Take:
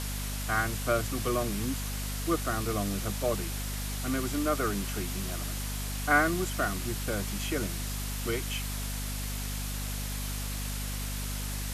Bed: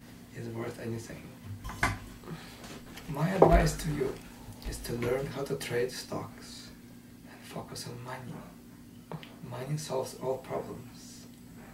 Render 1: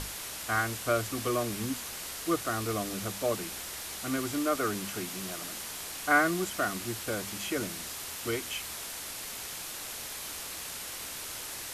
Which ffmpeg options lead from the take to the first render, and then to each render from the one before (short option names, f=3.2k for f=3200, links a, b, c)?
-af "bandreject=f=50:t=h:w=6,bandreject=f=100:t=h:w=6,bandreject=f=150:t=h:w=6,bandreject=f=200:t=h:w=6,bandreject=f=250:t=h:w=6"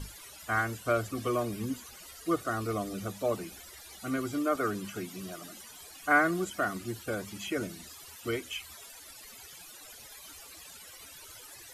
-af "afftdn=nr=17:nf=-40"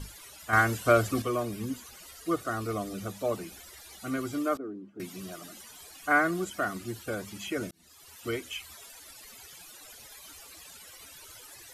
-filter_complex "[0:a]asettb=1/sr,asplit=3[a][b][c];[a]atrim=end=4.574[d];[b]atrim=start=4.57:end=5,asetpts=PTS-STARTPTS,afade=t=in:d=0.004:c=qsin,afade=t=out:st=0.426:d=0.004:c=qsin,bandpass=f=300:t=q:w=3.2[e];[c]atrim=start=4.996[f];[d][e]acrossfade=d=0.004:c1=hsin:c2=qsin[g];[g][f]acrossfade=d=0.004:c1=qsin:c2=hsin,asplit=4[h][i][j][k];[h]atrim=end=0.532[l];[i]atrim=start=0.528:end=1.222,asetpts=PTS-STARTPTS,volume=6.5dB[m];[j]atrim=start=1.218:end=7.71,asetpts=PTS-STARTPTS,afade=t=out:st=6.488:d=0.004:c=hsin[n];[k]atrim=start=7.71,asetpts=PTS-STARTPTS,afade=t=in:d=0.54[o];[l][m]acrossfade=d=0.004:c1=hsin:c2=hsin[p];[n][o]concat=n=2:v=0:a=1[q];[p][q]acrossfade=d=0.004:c1=hsin:c2=hsin"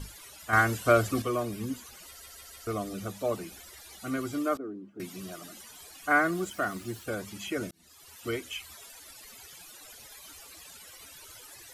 -filter_complex "[0:a]asettb=1/sr,asplit=3[a][b][c];[a]atrim=end=6.174[d];[b]atrim=start=6.17:end=7.05,asetpts=PTS-STARTPTS,afade=t=in:d=0.004:c=qsin,afade=t=out:st=0.876:d=0.004:c=qsin,aeval=exprs='val(0)*gte(abs(val(0)),0.00316)':c=same[e];[c]atrim=start=7.046[f];[d][e]acrossfade=d=0.004:c1=hsin:c2=qsin[g];[g][f]acrossfade=d=0.004:c1=qsin:c2=hsin,asplit=5[h][i][j][k][l];[h]atrim=end=2.222[m];[i]atrim=start=2.068:end=2.222[n];[j]atrim=start=2.068:end=2.222[o];[k]atrim=start=2.068:end=2.222[p];[l]atrim=start=2.668[q];[m][n]acrossfade=d=0.004:c1=hsin:c2=hsin[r];[r][o]acrossfade=d=0.004:c1=hsin:c2=hsin[s];[s][p]acrossfade=d=0.004:c1=hsin:c2=hsin[t];[t][q]acrossfade=d=0.004:c1=hsin:c2=hsin"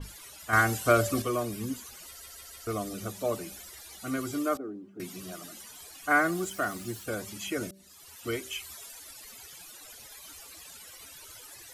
-af "bandreject=f=193.1:t=h:w=4,bandreject=f=386.2:t=h:w=4,bandreject=f=579.3:t=h:w=4,bandreject=f=772.4:t=h:w=4,adynamicequalizer=threshold=0.00316:dfrequency=4600:dqfactor=0.7:tfrequency=4600:tqfactor=0.7:attack=5:release=100:ratio=0.375:range=2.5:mode=boostabove:tftype=highshelf"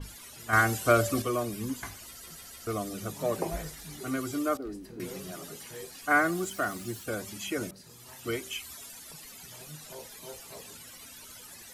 -filter_complex "[1:a]volume=-13.5dB[a];[0:a][a]amix=inputs=2:normalize=0"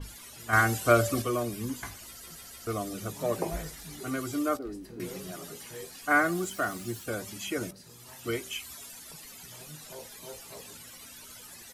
-filter_complex "[0:a]asplit=2[a][b];[b]adelay=17,volume=-14dB[c];[a][c]amix=inputs=2:normalize=0"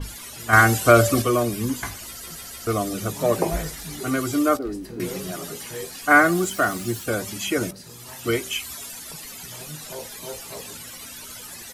-af "volume=9dB,alimiter=limit=-1dB:level=0:latency=1"